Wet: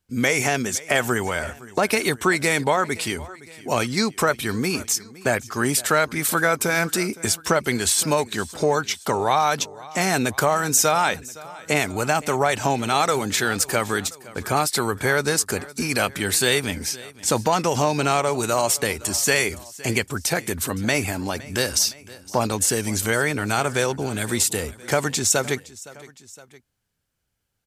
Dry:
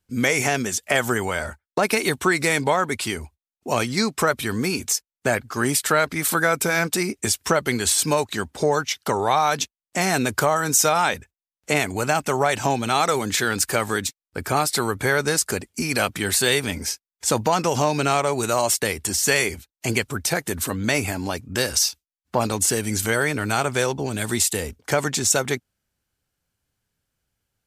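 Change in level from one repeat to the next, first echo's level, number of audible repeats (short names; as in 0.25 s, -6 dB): -4.5 dB, -20.0 dB, 2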